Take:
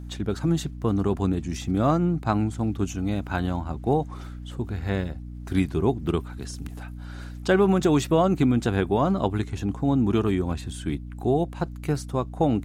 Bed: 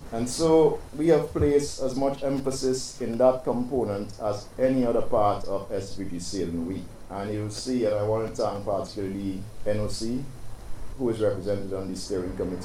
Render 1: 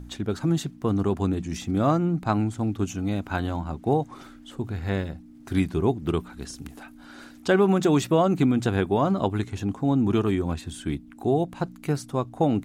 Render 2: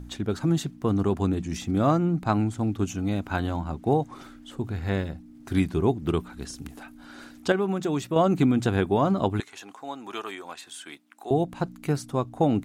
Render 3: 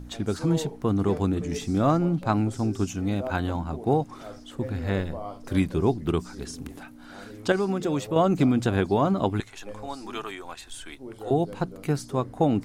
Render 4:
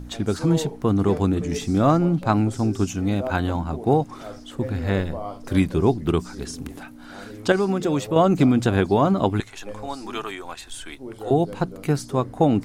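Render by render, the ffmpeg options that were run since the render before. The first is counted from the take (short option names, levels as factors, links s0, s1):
-af "bandreject=f=60:t=h:w=4,bandreject=f=120:t=h:w=4,bandreject=f=180:t=h:w=4"
-filter_complex "[0:a]asettb=1/sr,asplit=3[s0][s1][s2];[s0]atrim=end=9.404[s3];[s1]atrim=start=9.4:end=11.31,asetpts=PTS-STARTPTS,afade=t=in:d=0.004:c=qsin,afade=t=out:st=1.906:d=0.004:c=qsin,highpass=820[s4];[s2]atrim=start=11.306[s5];[s3][s4]acrossfade=d=0.004:c1=hsin:c2=qsin[s6];[s6][s5]acrossfade=d=0.004:c1=qsin:c2=hsin,asplit=3[s7][s8][s9];[s7]atrim=end=7.522[s10];[s8]atrim=start=7.518:end=8.162,asetpts=PTS-STARTPTS,volume=0.473[s11];[s9]atrim=start=8.158[s12];[s10][s11]acrossfade=d=0.004:c1=hsin:c2=hsin[s13];[s13][s12]acrossfade=d=0.004:c1=hsin:c2=hsin"
-filter_complex "[1:a]volume=0.188[s0];[0:a][s0]amix=inputs=2:normalize=0"
-af "volume=1.58"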